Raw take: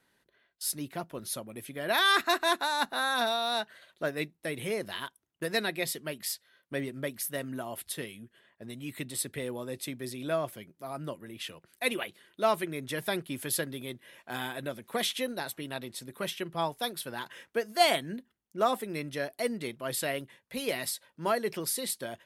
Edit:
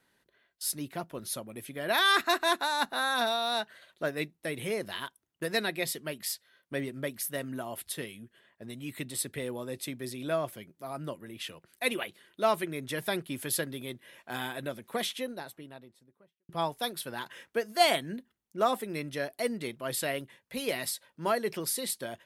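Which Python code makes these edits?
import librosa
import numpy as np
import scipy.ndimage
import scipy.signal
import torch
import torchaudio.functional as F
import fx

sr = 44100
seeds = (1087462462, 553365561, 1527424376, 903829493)

y = fx.studio_fade_out(x, sr, start_s=14.64, length_s=1.85)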